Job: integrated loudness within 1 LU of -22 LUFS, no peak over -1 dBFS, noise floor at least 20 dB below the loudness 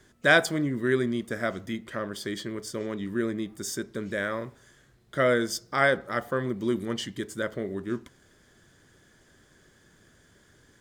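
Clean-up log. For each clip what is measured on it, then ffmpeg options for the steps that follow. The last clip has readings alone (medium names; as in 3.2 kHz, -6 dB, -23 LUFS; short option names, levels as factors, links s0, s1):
loudness -28.5 LUFS; peak level -5.5 dBFS; loudness target -22.0 LUFS
-> -af "volume=2.11,alimiter=limit=0.891:level=0:latency=1"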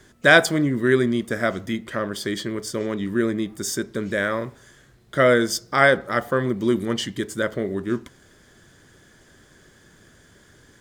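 loudness -22.0 LUFS; peak level -1.0 dBFS; noise floor -54 dBFS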